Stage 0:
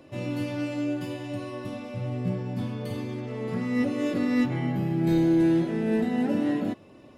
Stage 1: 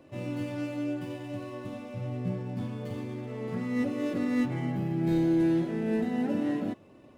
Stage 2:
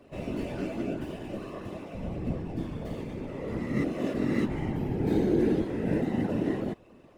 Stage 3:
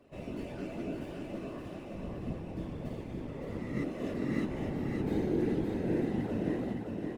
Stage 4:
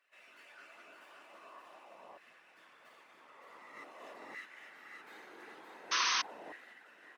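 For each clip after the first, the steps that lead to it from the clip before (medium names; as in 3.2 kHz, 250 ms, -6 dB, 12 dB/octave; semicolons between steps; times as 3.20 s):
median filter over 9 samples; trim -3.5 dB
whisper effect
feedback delay 566 ms, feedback 44%, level -4 dB; trim -6.5 dB
painted sound noise, 5.91–6.22 s, 960–6400 Hz -26 dBFS; LFO high-pass saw down 0.46 Hz 840–1700 Hz; trim -7 dB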